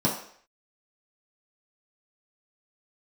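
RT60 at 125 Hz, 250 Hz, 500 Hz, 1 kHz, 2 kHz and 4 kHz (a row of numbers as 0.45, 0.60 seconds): 0.35, 0.50, 0.60, 0.60, 0.60, 0.60 seconds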